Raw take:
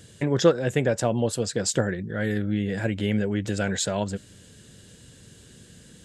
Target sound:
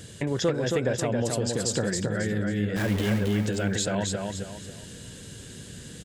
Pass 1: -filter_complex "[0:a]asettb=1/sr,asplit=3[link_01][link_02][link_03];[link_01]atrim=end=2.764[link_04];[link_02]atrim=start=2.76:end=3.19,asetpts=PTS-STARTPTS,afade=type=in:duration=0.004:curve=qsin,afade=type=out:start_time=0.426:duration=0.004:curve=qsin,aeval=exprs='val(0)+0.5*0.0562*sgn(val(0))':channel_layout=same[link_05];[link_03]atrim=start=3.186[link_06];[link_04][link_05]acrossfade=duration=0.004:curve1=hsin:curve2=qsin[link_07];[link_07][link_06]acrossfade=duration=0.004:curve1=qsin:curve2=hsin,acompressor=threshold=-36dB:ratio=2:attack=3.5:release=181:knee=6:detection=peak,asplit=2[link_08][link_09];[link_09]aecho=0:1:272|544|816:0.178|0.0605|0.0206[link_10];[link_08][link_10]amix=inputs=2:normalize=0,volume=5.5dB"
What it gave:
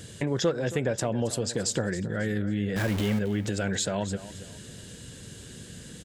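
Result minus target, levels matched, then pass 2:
echo-to-direct −11.5 dB
-filter_complex "[0:a]asettb=1/sr,asplit=3[link_01][link_02][link_03];[link_01]atrim=end=2.764[link_04];[link_02]atrim=start=2.76:end=3.19,asetpts=PTS-STARTPTS,afade=type=in:duration=0.004:curve=qsin,afade=type=out:start_time=0.426:duration=0.004:curve=qsin,aeval=exprs='val(0)+0.5*0.0562*sgn(val(0))':channel_layout=same[link_05];[link_03]atrim=start=3.186[link_06];[link_04][link_05]acrossfade=duration=0.004:curve1=hsin:curve2=qsin[link_07];[link_07][link_06]acrossfade=duration=0.004:curve1=qsin:curve2=hsin,acompressor=threshold=-36dB:ratio=2:attack=3.5:release=181:knee=6:detection=peak,asplit=2[link_08][link_09];[link_09]aecho=0:1:272|544|816|1088:0.668|0.227|0.0773|0.0263[link_10];[link_08][link_10]amix=inputs=2:normalize=0,volume=5.5dB"

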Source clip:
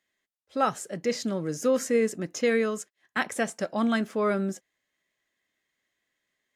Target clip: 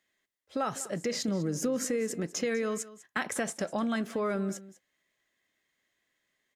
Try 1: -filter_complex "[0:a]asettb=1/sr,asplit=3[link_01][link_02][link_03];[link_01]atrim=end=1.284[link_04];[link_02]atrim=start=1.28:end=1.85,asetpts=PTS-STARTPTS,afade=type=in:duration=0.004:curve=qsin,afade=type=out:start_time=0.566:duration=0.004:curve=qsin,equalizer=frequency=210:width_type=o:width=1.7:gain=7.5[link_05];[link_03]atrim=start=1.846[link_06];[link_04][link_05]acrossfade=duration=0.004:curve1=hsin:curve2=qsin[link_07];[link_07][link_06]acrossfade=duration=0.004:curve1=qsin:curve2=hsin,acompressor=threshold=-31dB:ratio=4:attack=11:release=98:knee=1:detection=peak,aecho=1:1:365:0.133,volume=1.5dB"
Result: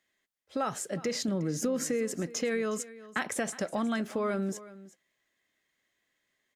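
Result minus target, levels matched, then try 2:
echo 167 ms late
-filter_complex "[0:a]asettb=1/sr,asplit=3[link_01][link_02][link_03];[link_01]atrim=end=1.284[link_04];[link_02]atrim=start=1.28:end=1.85,asetpts=PTS-STARTPTS,afade=type=in:duration=0.004:curve=qsin,afade=type=out:start_time=0.566:duration=0.004:curve=qsin,equalizer=frequency=210:width_type=o:width=1.7:gain=7.5[link_05];[link_03]atrim=start=1.846[link_06];[link_04][link_05]acrossfade=duration=0.004:curve1=hsin:curve2=qsin[link_07];[link_07][link_06]acrossfade=duration=0.004:curve1=qsin:curve2=hsin,acompressor=threshold=-31dB:ratio=4:attack=11:release=98:knee=1:detection=peak,aecho=1:1:198:0.133,volume=1.5dB"

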